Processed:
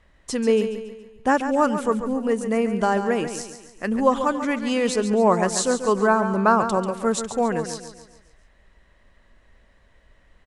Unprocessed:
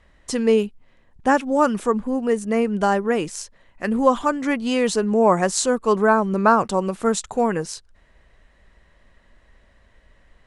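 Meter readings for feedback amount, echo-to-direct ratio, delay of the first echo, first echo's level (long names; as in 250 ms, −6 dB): 45%, −8.5 dB, 140 ms, −9.5 dB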